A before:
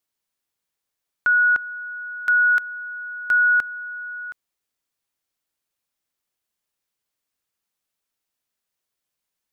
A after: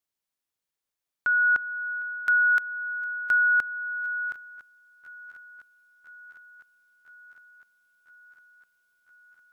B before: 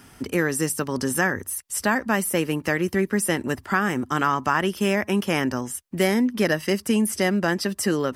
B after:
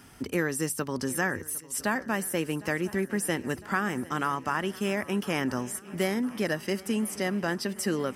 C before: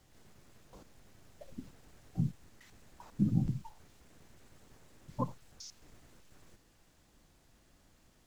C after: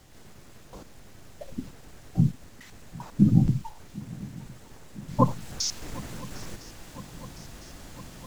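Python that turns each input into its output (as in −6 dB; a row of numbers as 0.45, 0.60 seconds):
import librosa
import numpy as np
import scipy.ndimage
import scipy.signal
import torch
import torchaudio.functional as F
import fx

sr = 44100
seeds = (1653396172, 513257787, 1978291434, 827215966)

y = fx.rider(x, sr, range_db=5, speed_s=0.5)
y = fx.echo_swing(y, sr, ms=1007, ratio=3, feedback_pct=70, wet_db=-21.0)
y = y * 10.0 ** (-30 / 20.0) / np.sqrt(np.mean(np.square(y)))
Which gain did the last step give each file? −3.5, −6.5, +15.5 decibels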